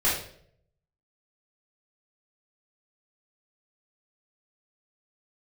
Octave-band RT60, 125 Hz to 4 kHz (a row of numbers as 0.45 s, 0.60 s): 1.0 s, 0.70 s, 0.75 s, 0.50 s, 0.50 s, 0.50 s